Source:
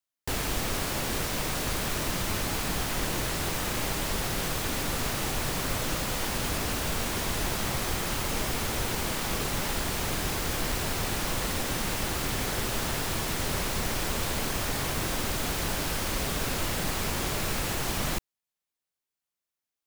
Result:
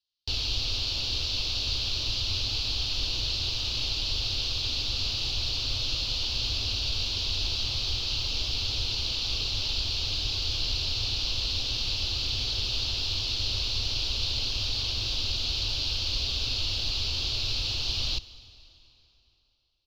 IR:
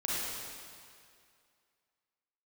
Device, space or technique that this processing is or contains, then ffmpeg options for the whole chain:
ducked reverb: -filter_complex "[0:a]asplit=3[link_01][link_02][link_03];[1:a]atrim=start_sample=2205[link_04];[link_02][link_04]afir=irnorm=-1:irlink=0[link_05];[link_03]apad=whole_len=876241[link_06];[link_05][link_06]sidechaincompress=threshold=-42dB:ratio=3:attack=9:release=1250,volume=-8dB[link_07];[link_01][link_07]amix=inputs=2:normalize=0,firequalizer=gain_entry='entry(110,0);entry(160,-23);entry(240,-12);entry(720,-14);entry(1300,-15);entry(1900,-21);entry(2700,3);entry(4400,12);entry(8300,-25);entry(15000,-27)':delay=0.05:min_phase=1"

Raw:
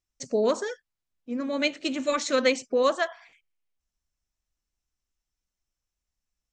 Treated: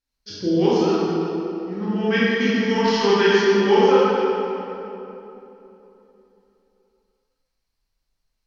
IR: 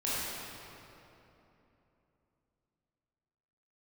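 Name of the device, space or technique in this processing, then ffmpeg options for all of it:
slowed and reverbed: -filter_complex "[0:a]asetrate=33957,aresample=44100[link_01];[1:a]atrim=start_sample=2205[link_02];[link_01][link_02]afir=irnorm=-1:irlink=0"

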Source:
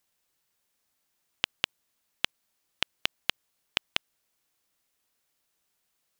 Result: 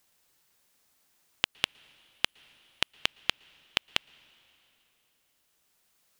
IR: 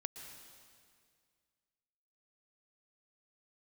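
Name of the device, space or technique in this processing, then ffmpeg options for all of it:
ducked reverb: -filter_complex "[0:a]asettb=1/sr,asplit=3[link_01][link_02][link_03];[link_01]atrim=end=1.514[link_04];[link_02]atrim=start=1.51:end=2.93,asetpts=PTS-STARTPTS,afade=type=in:duration=0.004:curve=qsin,afade=type=out:start_time=1.416:duration=0.004:curve=qsin,equalizer=frequency=10000:width=3.3:gain=5.5[link_05];[link_03]atrim=start=2.926[link_06];[link_04][link_05]acrossfade=duration=0.004:curve1=hsin:curve2=qsin[link_07];[link_07][link_06]acrossfade=duration=0.004:curve1=qsin:curve2=hsin,asplit=3[link_08][link_09][link_10];[1:a]atrim=start_sample=2205[link_11];[link_09][link_11]afir=irnorm=-1:irlink=0[link_12];[link_10]apad=whole_len=273157[link_13];[link_12][link_13]sidechaincompress=threshold=-38dB:ratio=16:attack=6.6:release=1430,volume=5.5dB[link_14];[link_08][link_14]amix=inputs=2:normalize=0"

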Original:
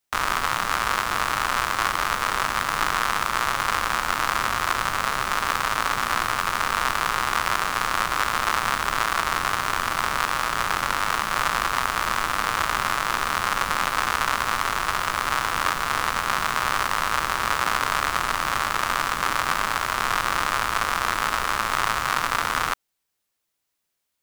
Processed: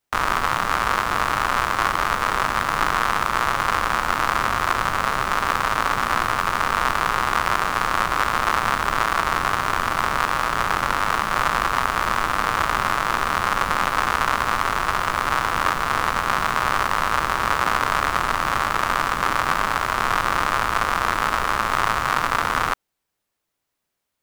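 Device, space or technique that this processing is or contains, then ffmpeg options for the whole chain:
behind a face mask: -af "highshelf=frequency=2100:gain=-8,volume=5dB"

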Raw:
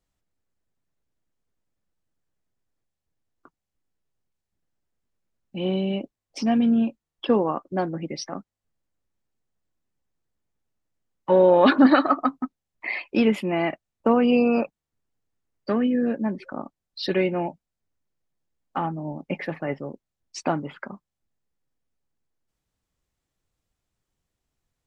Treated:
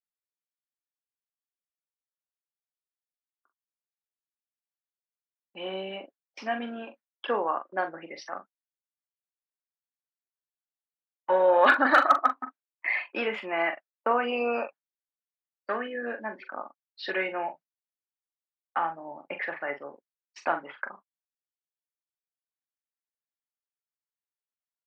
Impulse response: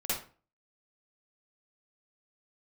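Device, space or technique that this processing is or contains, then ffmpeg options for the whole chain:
megaphone: -filter_complex "[0:a]agate=range=-22dB:threshold=-39dB:ratio=16:detection=peak,highpass=690,lowpass=2600,equalizer=frequency=1600:width_type=o:width=0.58:gain=6.5,asoftclip=type=hard:threshold=-9.5dB,asplit=2[link_01][link_02];[link_02]adelay=42,volume=-9dB[link_03];[link_01][link_03]amix=inputs=2:normalize=0"

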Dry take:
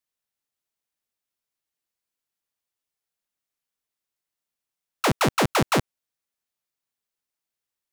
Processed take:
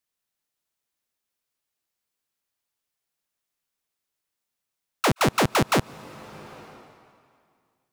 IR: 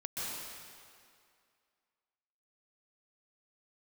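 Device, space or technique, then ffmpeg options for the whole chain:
ducked reverb: -filter_complex "[0:a]asplit=3[link_01][link_02][link_03];[1:a]atrim=start_sample=2205[link_04];[link_02][link_04]afir=irnorm=-1:irlink=0[link_05];[link_03]apad=whole_len=349537[link_06];[link_05][link_06]sidechaincompress=threshold=-45dB:ratio=4:attack=16:release=468,volume=-5.5dB[link_07];[link_01][link_07]amix=inputs=2:normalize=0"

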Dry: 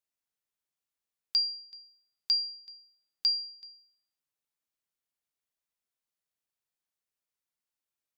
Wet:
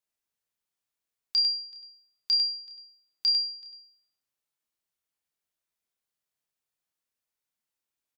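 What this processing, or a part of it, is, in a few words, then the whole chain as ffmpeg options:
slapback doubling: -filter_complex "[0:a]asplit=3[link_01][link_02][link_03];[link_02]adelay=29,volume=-5.5dB[link_04];[link_03]adelay=99,volume=-5dB[link_05];[link_01][link_04][link_05]amix=inputs=3:normalize=0"

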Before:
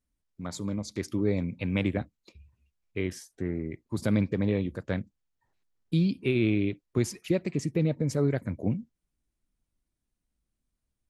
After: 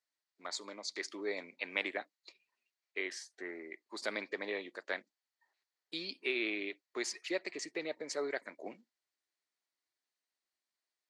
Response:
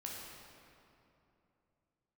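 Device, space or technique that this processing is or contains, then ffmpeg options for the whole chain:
phone speaker on a table: -af "highpass=frequency=440:width=0.5412,highpass=frequency=440:width=1.3066,equalizer=frequency=500:width_type=q:width=4:gain=-7,equalizer=frequency=1900:width_type=q:width=4:gain=7,equalizer=frequency=4400:width_type=q:width=4:gain=8,lowpass=frequency=8200:width=0.5412,lowpass=frequency=8200:width=1.3066,volume=-2dB"

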